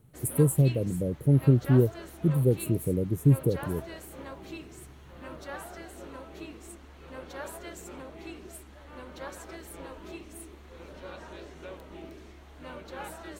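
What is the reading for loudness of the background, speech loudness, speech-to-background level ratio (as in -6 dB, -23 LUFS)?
-43.5 LUFS, -25.5 LUFS, 18.0 dB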